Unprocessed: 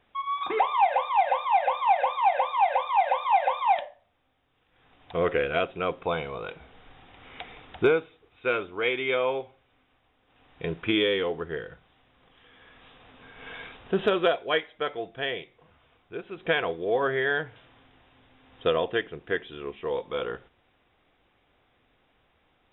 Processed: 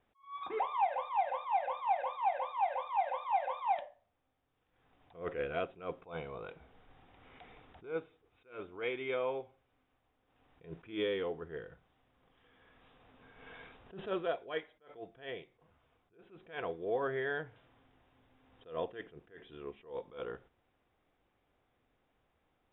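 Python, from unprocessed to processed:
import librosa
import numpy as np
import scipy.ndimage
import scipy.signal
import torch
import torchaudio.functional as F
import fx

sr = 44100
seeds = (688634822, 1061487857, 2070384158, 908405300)

y = fx.high_shelf(x, sr, hz=2100.0, db=-9.0)
y = fx.attack_slew(y, sr, db_per_s=170.0)
y = y * 10.0 ** (-8.0 / 20.0)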